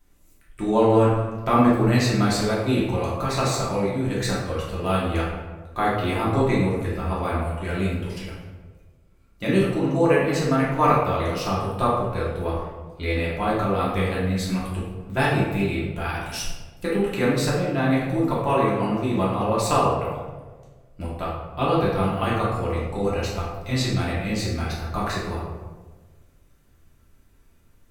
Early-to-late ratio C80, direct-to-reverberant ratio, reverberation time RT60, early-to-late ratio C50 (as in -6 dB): 3.5 dB, -7.5 dB, 1.3 s, 0.5 dB